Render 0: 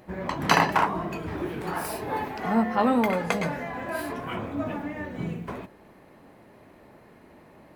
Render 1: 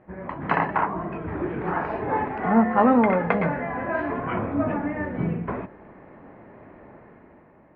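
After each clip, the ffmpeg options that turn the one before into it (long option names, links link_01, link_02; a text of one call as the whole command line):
ffmpeg -i in.wav -af "lowpass=frequency=2100:width=0.5412,lowpass=frequency=2100:width=1.3066,dynaudnorm=framelen=140:gausssize=11:maxgain=9dB,volume=-3dB" out.wav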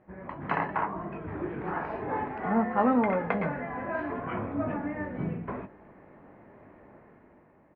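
ffmpeg -i in.wav -filter_complex "[0:a]asplit=2[link_01][link_02];[link_02]adelay=20,volume=-12.5dB[link_03];[link_01][link_03]amix=inputs=2:normalize=0,volume=-6.5dB" out.wav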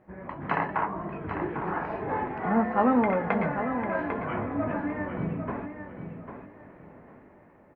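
ffmpeg -i in.wav -af "aecho=1:1:798|1596|2394:0.376|0.0827|0.0182,volume=1.5dB" out.wav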